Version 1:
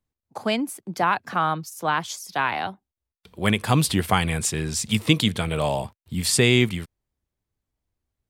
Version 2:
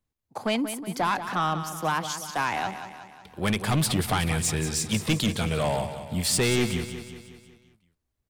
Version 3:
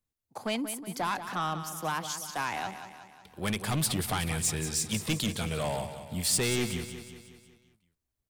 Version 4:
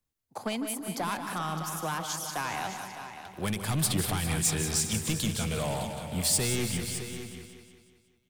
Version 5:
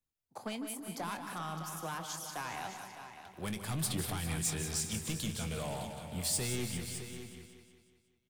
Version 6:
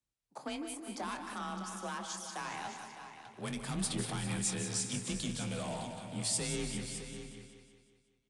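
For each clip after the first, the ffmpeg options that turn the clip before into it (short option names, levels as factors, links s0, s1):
-filter_complex "[0:a]asoftclip=type=tanh:threshold=0.119,asplit=2[s0][s1];[s1]aecho=0:1:183|366|549|732|915|1098:0.299|0.158|0.0839|0.0444|0.0236|0.0125[s2];[s0][s2]amix=inputs=2:normalize=0"
-af "highshelf=f=5200:g=6.5,volume=0.501"
-filter_complex "[0:a]acrossover=split=200|6800[s0][s1][s2];[s1]alimiter=level_in=1.12:limit=0.0631:level=0:latency=1:release=288,volume=0.891[s3];[s0][s3][s2]amix=inputs=3:normalize=0,aecho=1:1:152|400|610:0.282|0.211|0.266,volume=1.26"
-filter_complex "[0:a]asplit=2[s0][s1];[s1]adelay=24,volume=0.224[s2];[s0][s2]amix=inputs=2:normalize=0,volume=0.422"
-af "afreqshift=31,aresample=22050,aresample=44100,bandreject=f=78.44:t=h:w=4,bandreject=f=156.88:t=h:w=4,bandreject=f=235.32:t=h:w=4,bandreject=f=313.76:t=h:w=4,bandreject=f=392.2:t=h:w=4,bandreject=f=470.64:t=h:w=4,bandreject=f=549.08:t=h:w=4,bandreject=f=627.52:t=h:w=4,bandreject=f=705.96:t=h:w=4,bandreject=f=784.4:t=h:w=4,bandreject=f=862.84:t=h:w=4,bandreject=f=941.28:t=h:w=4,bandreject=f=1019.72:t=h:w=4,bandreject=f=1098.16:t=h:w=4,bandreject=f=1176.6:t=h:w=4,bandreject=f=1255.04:t=h:w=4,bandreject=f=1333.48:t=h:w=4,bandreject=f=1411.92:t=h:w=4,bandreject=f=1490.36:t=h:w=4,bandreject=f=1568.8:t=h:w=4,bandreject=f=1647.24:t=h:w=4,bandreject=f=1725.68:t=h:w=4,bandreject=f=1804.12:t=h:w=4,bandreject=f=1882.56:t=h:w=4,bandreject=f=1961:t=h:w=4,bandreject=f=2039.44:t=h:w=4,bandreject=f=2117.88:t=h:w=4,bandreject=f=2196.32:t=h:w=4,bandreject=f=2274.76:t=h:w=4,bandreject=f=2353.2:t=h:w=4,bandreject=f=2431.64:t=h:w=4,bandreject=f=2510.08:t=h:w=4,bandreject=f=2588.52:t=h:w=4,bandreject=f=2666.96:t=h:w=4,bandreject=f=2745.4:t=h:w=4"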